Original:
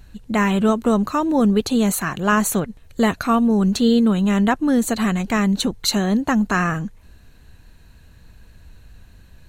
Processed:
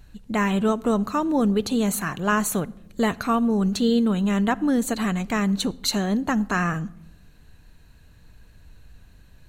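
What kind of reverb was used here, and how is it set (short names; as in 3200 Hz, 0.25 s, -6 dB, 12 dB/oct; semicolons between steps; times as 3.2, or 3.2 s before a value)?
shoebox room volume 2800 m³, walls furnished, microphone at 0.39 m; gain -4 dB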